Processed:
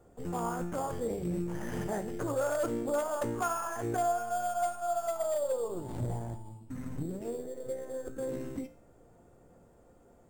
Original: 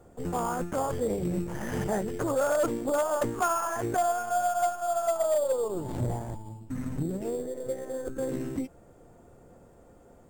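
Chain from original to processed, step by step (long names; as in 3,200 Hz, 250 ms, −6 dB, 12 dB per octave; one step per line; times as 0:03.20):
tuned comb filter 58 Hz, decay 0.52 s, harmonics all, mix 60%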